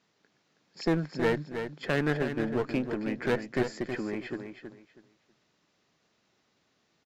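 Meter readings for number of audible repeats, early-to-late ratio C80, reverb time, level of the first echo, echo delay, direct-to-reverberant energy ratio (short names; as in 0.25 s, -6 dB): 3, none, none, -8.0 dB, 0.321 s, none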